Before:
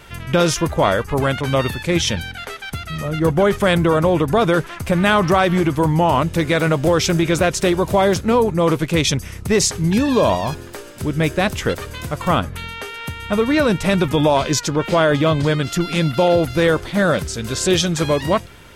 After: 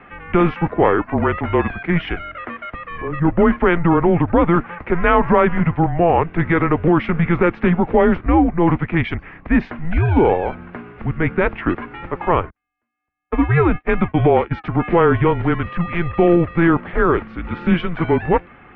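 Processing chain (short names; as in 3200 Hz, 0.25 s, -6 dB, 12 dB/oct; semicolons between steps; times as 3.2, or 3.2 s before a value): 12.5–14.64 gate -18 dBFS, range -49 dB; mistuned SSB -170 Hz 200–2500 Hz; gain +2 dB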